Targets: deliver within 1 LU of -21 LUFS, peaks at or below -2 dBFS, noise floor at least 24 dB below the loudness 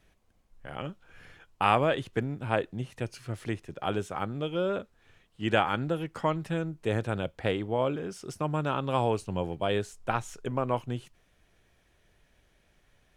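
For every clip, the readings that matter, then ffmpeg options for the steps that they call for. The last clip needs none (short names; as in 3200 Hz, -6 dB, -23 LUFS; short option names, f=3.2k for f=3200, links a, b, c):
loudness -31.0 LUFS; peak -7.5 dBFS; loudness target -21.0 LUFS
-> -af "volume=10dB,alimiter=limit=-2dB:level=0:latency=1"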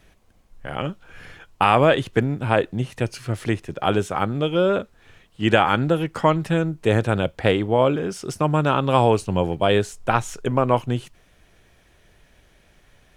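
loudness -21.5 LUFS; peak -2.0 dBFS; noise floor -57 dBFS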